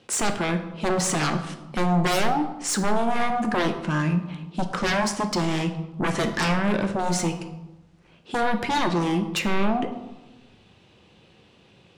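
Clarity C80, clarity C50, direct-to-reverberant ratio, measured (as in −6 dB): 12.0 dB, 9.5 dB, 6.0 dB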